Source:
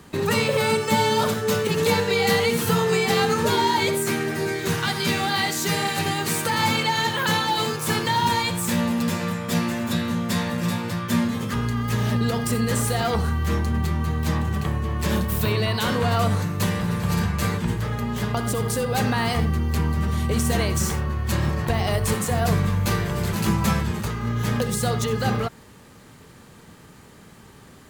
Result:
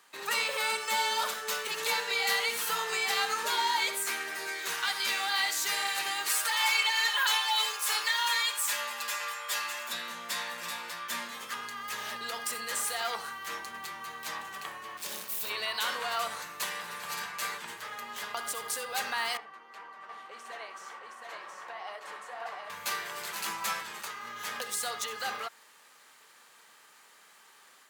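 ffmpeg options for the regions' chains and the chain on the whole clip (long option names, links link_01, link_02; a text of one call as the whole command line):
ffmpeg -i in.wav -filter_complex "[0:a]asettb=1/sr,asplit=3[link_01][link_02][link_03];[link_01]atrim=end=6.294[link_04];[link_02]atrim=start=6.29:end=9.88,asetpts=PTS-STARTPTS,afade=type=in:duration=0.004:curve=qsin,afade=type=out:start_time=3.586:duration=0.004:curve=qsin,highpass=590,aecho=1:1:4.9:0.88,atrim=end_sample=158319[link_05];[link_03]atrim=start=9.876[link_06];[link_04][link_05]acrossfade=duration=0.004:curve1=hsin:curve2=qsin[link_07];[link_07][link_06]acrossfade=duration=0.004:curve1=qsin:curve2=hsin,asettb=1/sr,asplit=3[link_08][link_09][link_10];[link_08]atrim=end=14.974[link_11];[link_09]atrim=start=14.97:end=15.5,asetpts=PTS-STARTPTS,afade=type=in:duration=0.004:curve=qsin,afade=type=out:start_time=0.526:duration=0.004:curve=qsin,equalizer=frequency=1500:width=0.65:gain=-11.5,acrusher=bits=3:mode=log:mix=0:aa=0.000001[link_12];[link_10]atrim=start=15.496[link_13];[link_11][link_12]acrossfade=duration=0.004:curve1=hsin:curve2=qsin[link_14];[link_14][link_13]acrossfade=duration=0.004:curve1=qsin:curve2=hsin,asettb=1/sr,asplit=3[link_15][link_16][link_17];[link_15]atrim=end=19.374[link_18];[link_16]atrim=start=19.37:end=22.7,asetpts=PTS-STARTPTS,afade=type=in:duration=0.004:curve=qsin,afade=type=out:start_time=3.326:duration=0.004:curve=qsin,bandpass=frequency=830:width_type=q:width=0.78,flanger=delay=1.6:depth=9.5:regen=56:speed=1.9:shape=triangular,aecho=1:1:719:0.668,atrim=end_sample=146853[link_19];[link_17]atrim=start=22.696[link_20];[link_18][link_19]acrossfade=duration=0.004:curve1=hsin:curve2=qsin[link_21];[link_21][link_20]acrossfade=duration=0.004:curve1=qsin:curve2=hsin,highpass=1000,dynaudnorm=framelen=130:gausssize=3:maxgain=4dB,volume=-8dB" out.wav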